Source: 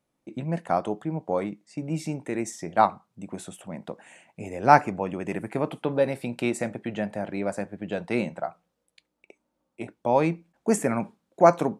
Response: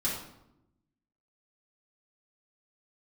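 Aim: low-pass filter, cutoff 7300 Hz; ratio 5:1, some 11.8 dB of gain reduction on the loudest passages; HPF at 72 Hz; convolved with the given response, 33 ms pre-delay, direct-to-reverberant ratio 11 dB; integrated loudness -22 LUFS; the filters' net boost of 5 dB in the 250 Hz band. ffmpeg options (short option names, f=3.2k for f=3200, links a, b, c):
-filter_complex "[0:a]highpass=72,lowpass=7.3k,equalizer=f=250:t=o:g=6.5,acompressor=threshold=-22dB:ratio=5,asplit=2[a][b];[1:a]atrim=start_sample=2205,adelay=33[c];[b][c]afir=irnorm=-1:irlink=0,volume=-17.5dB[d];[a][d]amix=inputs=2:normalize=0,volume=7.5dB"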